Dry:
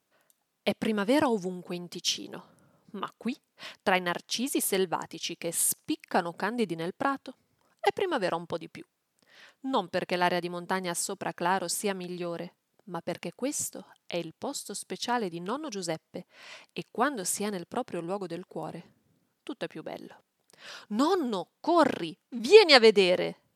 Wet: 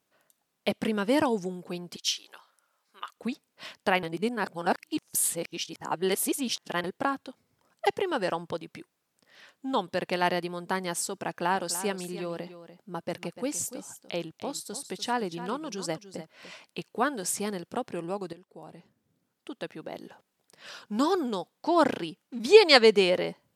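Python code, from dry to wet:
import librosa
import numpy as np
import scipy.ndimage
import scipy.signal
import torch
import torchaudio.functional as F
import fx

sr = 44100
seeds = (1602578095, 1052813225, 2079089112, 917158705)

y = fx.highpass(x, sr, hz=1200.0, slope=12, at=(1.96, 3.16))
y = fx.echo_single(y, sr, ms=293, db=-13.0, at=(11.52, 16.65), fade=0.02)
y = fx.edit(y, sr, fx.reverse_span(start_s=4.03, length_s=2.81),
    fx.fade_in_from(start_s=18.33, length_s=1.62, floor_db=-14.5), tone=tone)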